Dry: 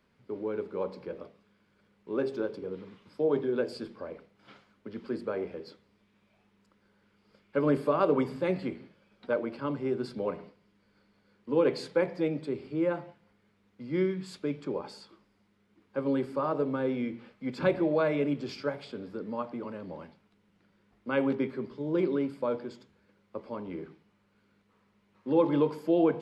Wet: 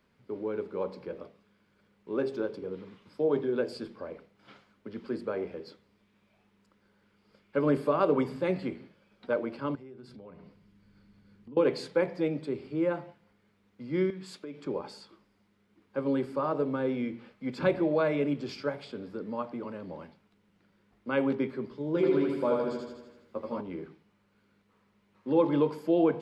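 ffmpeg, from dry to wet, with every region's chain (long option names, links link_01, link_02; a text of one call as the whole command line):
ffmpeg -i in.wav -filter_complex "[0:a]asettb=1/sr,asplit=3[link_01][link_02][link_03];[link_01]atrim=end=9.754[link_04];[link_02]atrim=start=9.75:end=11.57,asetpts=PTS-STARTPTS,afade=type=in:duration=0.004:curve=qsin,afade=type=out:start_time=1.816:duration=0.004:curve=qsin,asubboost=boost=9.5:cutoff=240,acompressor=threshold=-48dB:ratio=4:attack=3.2:release=140:knee=1:detection=peak[link_05];[link_03]atrim=start=11.566[link_06];[link_04][link_05]acrossfade=duration=0.004:curve1=hsin:curve2=qsin[link_07];[link_07][link_06]acrossfade=duration=0.004:curve1=qsin:curve2=hsin,asettb=1/sr,asplit=3[link_08][link_09][link_10];[link_08]atrim=end=14.104[link_11];[link_09]atrim=start=14.1:end=14.66,asetpts=PTS-STARTPTS,afade=type=in:duration=0.004:curve=qsin,afade=type=out:start_time=0.556:duration=0.004:curve=qsin,highpass=200,acompressor=threshold=-37dB:ratio=6:attack=3.2:release=140:knee=1:detection=peak[link_12];[link_10]atrim=start=14.656[link_13];[link_11][link_12]acrossfade=duration=0.004:curve1=hsin:curve2=qsin[link_14];[link_14][link_13]acrossfade=duration=0.004:curve1=qsin:curve2=hsin,asettb=1/sr,asplit=3[link_15][link_16][link_17];[link_15]atrim=end=21.954[link_18];[link_16]atrim=start=21.95:end=23.61,asetpts=PTS-STARTPTS,afade=type=in:duration=0.004:curve=qsin,afade=type=out:start_time=1.656:duration=0.004:curve=qsin,asplit=2[link_19][link_20];[link_20]adelay=13,volume=-4dB[link_21];[link_19][link_21]amix=inputs=2:normalize=0,atrim=end_sample=73206,aecho=1:1:81|162|243|324|405|486|567|648|729:0.708|0.418|0.246|0.145|0.0858|0.0506|0.0299|0.0176|0.0104,atrim=end_sample=73206[link_22];[link_17]atrim=start=23.606[link_23];[link_18][link_22]acrossfade=duration=0.004:curve1=hsin:curve2=qsin[link_24];[link_24][link_23]acrossfade=duration=0.004:curve1=qsin:curve2=hsin" out.wav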